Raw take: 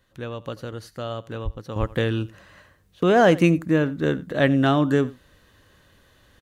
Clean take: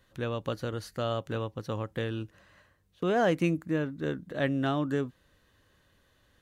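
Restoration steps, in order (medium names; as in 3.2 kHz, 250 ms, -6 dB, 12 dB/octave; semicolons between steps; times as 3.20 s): 1.44–1.56 s: high-pass 140 Hz 24 dB/octave; 1.79–1.91 s: high-pass 140 Hz 24 dB/octave; inverse comb 88 ms -20 dB; trim 0 dB, from 1.76 s -9.5 dB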